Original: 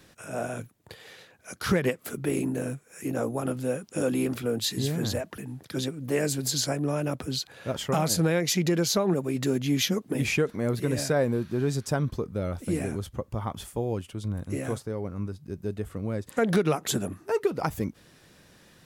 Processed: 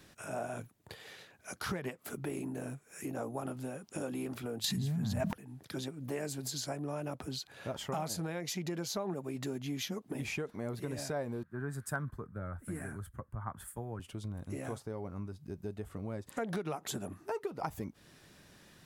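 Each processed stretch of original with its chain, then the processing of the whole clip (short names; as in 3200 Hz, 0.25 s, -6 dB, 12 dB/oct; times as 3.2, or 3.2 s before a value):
4.64–5.33 resonant low shelf 260 Hz +8 dB, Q 3 + notch 520 Hz, Q 6.1 + fast leveller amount 100%
11.43–14 EQ curve 140 Hz 0 dB, 410 Hz -6 dB, 820 Hz -5 dB, 1600 Hz +9 dB, 2500 Hz -9 dB, 5800 Hz -13 dB, 8400 Hz +1 dB + hard clip -17 dBFS + three-band expander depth 100%
whole clip: compressor 2.5:1, threshold -37 dBFS; dynamic EQ 830 Hz, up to +6 dB, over -53 dBFS, Q 1.4; notch 500 Hz, Q 12; gain -3 dB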